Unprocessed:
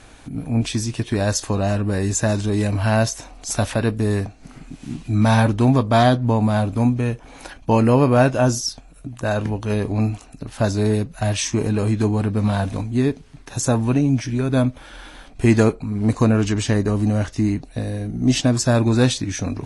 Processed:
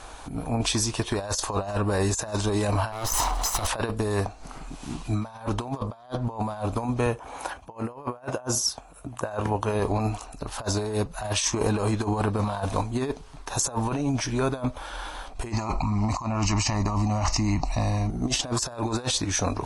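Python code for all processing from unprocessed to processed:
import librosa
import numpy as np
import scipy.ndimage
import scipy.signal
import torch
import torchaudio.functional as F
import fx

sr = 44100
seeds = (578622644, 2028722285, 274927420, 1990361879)

y = fx.chain(x, sr, fx.lower_of_two(delay_ms=0.99),
    fx.env_flatten(amount_pct=50), at=(2.92, 3.67))
y = fx.chain(y, sr, fx.highpass(hz=56.0, slope=24),
    fx.peak_eq(hz=4600.0, db=-6.0, octaves=0.95), at=(7.06, 9.8))
y = fx.chain(y, sr, fx.fixed_phaser(hz=2300.0, stages=8),
    fx.env_flatten(amount_pct=50), at=(15.52, 18.1))
y = fx.graphic_eq(y, sr, hz=(125, 250, 1000, 2000), db=(-9, -8, 8, -6))
y = fx.over_compress(y, sr, threshold_db=-26.0, ratio=-0.5)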